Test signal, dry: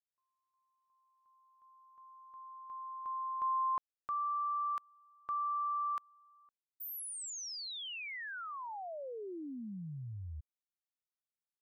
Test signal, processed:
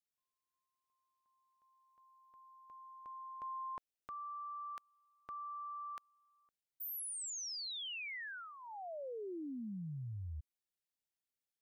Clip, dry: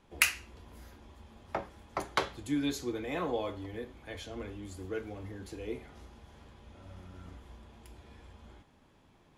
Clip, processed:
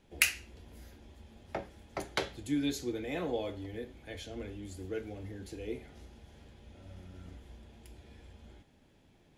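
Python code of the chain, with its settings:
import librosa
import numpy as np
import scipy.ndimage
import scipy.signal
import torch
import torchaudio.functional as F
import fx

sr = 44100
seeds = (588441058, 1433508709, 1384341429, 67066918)

y = fx.peak_eq(x, sr, hz=1100.0, db=-11.0, octaves=0.65)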